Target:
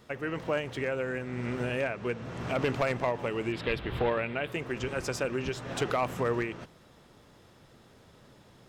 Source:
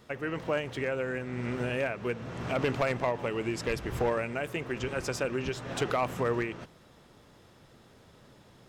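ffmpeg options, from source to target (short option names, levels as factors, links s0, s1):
-filter_complex "[0:a]asettb=1/sr,asplit=3[s0][s1][s2];[s0]atrim=end=1.814[s3];[s1]atrim=start=1.81:end=2.24,asetpts=PTS-STARTPTS,afade=t=in:d=0.004:c=qsin,afade=t=out:st=0.426:d=0.004:c=qsin,lowpass=10000[s4];[s2]atrim=start=2.236[s5];[s3][s4]acrossfade=d=0.004:c1=hsin:c2=qsin[s6];[s6][s5]acrossfade=d=0.004:c1=qsin:c2=hsin,asettb=1/sr,asplit=3[s7][s8][s9];[s7]atrim=end=3.524[s10];[s8]atrim=start=3.52:end=4.52,asetpts=PTS-STARTPTS,afade=t=in:d=0.004:c=qsin,afade=t=out:st=0.996:d=0.004:c=qsin,highshelf=f=4800:t=q:w=3:g=-10[s11];[s9]atrim=start=4.516[s12];[s10][s11]acrossfade=d=0.004:c1=hsin:c2=qsin[s13];[s13][s12]acrossfade=d=0.004:c1=qsin:c2=hsin"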